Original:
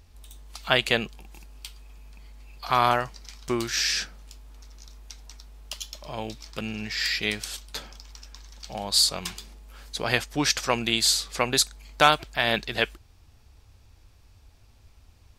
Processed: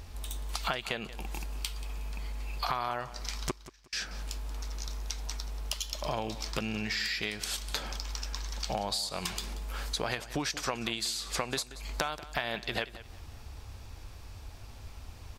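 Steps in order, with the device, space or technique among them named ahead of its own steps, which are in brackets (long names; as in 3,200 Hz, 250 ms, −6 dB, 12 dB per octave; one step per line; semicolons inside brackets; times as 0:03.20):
serial compression, peaks first (downward compressor 6 to 1, threshold −33 dBFS, peak gain reduction 19.5 dB; downward compressor 3 to 1, threshold −41 dBFS, peak gain reduction 10 dB)
0:03.51–0:03.93: noise gate −36 dBFS, range −39 dB
parametric band 910 Hz +3 dB 2.1 octaves
repeating echo 182 ms, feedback 27%, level −16 dB
level +8.5 dB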